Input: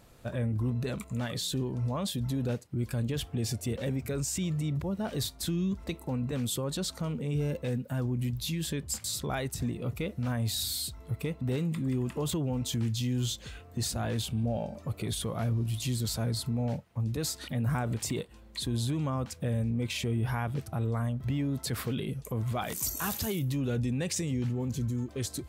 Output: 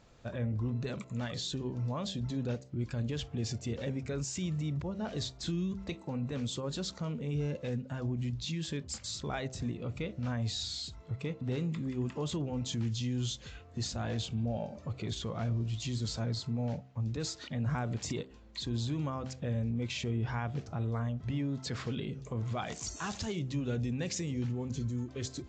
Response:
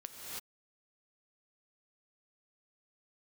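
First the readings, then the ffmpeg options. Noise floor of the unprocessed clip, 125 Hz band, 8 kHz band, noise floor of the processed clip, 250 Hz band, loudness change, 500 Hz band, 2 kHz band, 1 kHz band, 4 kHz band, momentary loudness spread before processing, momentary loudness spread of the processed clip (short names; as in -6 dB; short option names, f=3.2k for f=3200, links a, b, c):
-51 dBFS, -3.5 dB, -7.0 dB, -53 dBFS, -3.5 dB, -3.5 dB, -3.5 dB, -3.0 dB, -3.5 dB, -3.0 dB, 4 LU, 4 LU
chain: -af "bandreject=f=64.98:t=h:w=4,bandreject=f=129.96:t=h:w=4,bandreject=f=194.94:t=h:w=4,bandreject=f=259.92:t=h:w=4,bandreject=f=324.9:t=h:w=4,bandreject=f=389.88:t=h:w=4,bandreject=f=454.86:t=h:w=4,bandreject=f=519.84:t=h:w=4,bandreject=f=584.82:t=h:w=4,bandreject=f=649.8:t=h:w=4,bandreject=f=714.78:t=h:w=4,bandreject=f=779.76:t=h:w=4,volume=-3dB" -ar 16000 -c:a aac -b:a 48k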